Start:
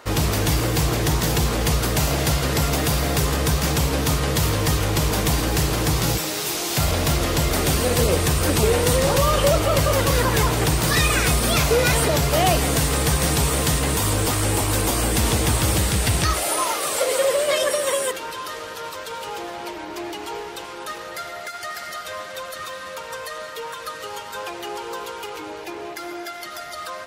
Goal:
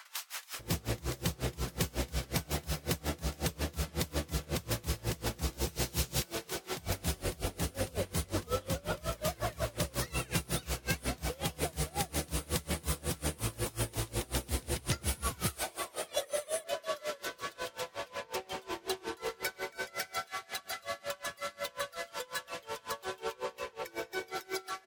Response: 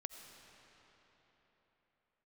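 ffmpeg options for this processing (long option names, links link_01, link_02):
-filter_complex "[0:a]acompressor=threshold=-27dB:ratio=6,acrossover=split=930[link_01][link_02];[link_01]adelay=590[link_03];[link_03][link_02]amix=inputs=2:normalize=0,asplit=2[link_04][link_05];[1:a]atrim=start_sample=2205[link_06];[link_05][link_06]afir=irnorm=-1:irlink=0,volume=-9.5dB[link_07];[link_04][link_07]amix=inputs=2:normalize=0,asetrate=48000,aresample=44100,aeval=exprs='val(0)*pow(10,-26*(0.5-0.5*cos(2*PI*5.5*n/s))/20)':channel_layout=same,volume=-1.5dB"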